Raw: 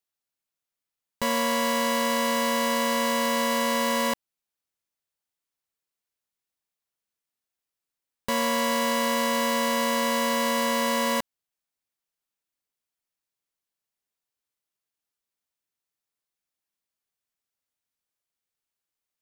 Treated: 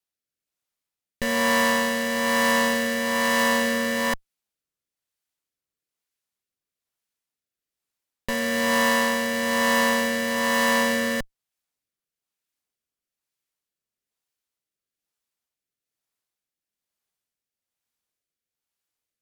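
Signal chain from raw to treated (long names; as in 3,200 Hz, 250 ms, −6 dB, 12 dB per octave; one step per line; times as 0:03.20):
harmonic generator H 8 −11 dB, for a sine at −15 dBFS
rotating-speaker cabinet horn 1.1 Hz
level +3.5 dB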